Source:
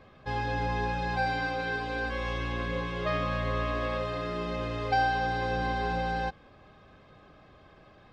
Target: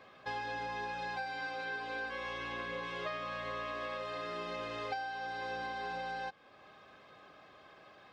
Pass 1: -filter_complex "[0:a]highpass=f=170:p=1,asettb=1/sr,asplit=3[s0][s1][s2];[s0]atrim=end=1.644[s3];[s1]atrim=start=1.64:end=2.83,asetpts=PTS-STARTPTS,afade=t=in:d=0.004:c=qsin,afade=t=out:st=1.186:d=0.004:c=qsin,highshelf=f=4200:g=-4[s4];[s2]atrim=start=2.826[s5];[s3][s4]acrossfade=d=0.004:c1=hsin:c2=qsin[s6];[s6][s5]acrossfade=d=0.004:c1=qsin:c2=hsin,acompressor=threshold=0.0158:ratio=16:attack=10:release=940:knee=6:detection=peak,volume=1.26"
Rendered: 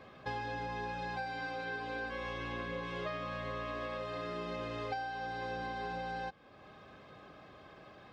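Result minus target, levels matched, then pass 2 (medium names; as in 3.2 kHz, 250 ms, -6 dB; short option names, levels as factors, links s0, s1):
125 Hz band +8.0 dB
-filter_complex "[0:a]highpass=f=670:p=1,asettb=1/sr,asplit=3[s0][s1][s2];[s0]atrim=end=1.644[s3];[s1]atrim=start=1.64:end=2.83,asetpts=PTS-STARTPTS,afade=t=in:d=0.004:c=qsin,afade=t=out:st=1.186:d=0.004:c=qsin,highshelf=f=4200:g=-4[s4];[s2]atrim=start=2.826[s5];[s3][s4]acrossfade=d=0.004:c1=hsin:c2=qsin[s6];[s6][s5]acrossfade=d=0.004:c1=qsin:c2=hsin,acompressor=threshold=0.0158:ratio=16:attack=10:release=940:knee=6:detection=peak,volume=1.26"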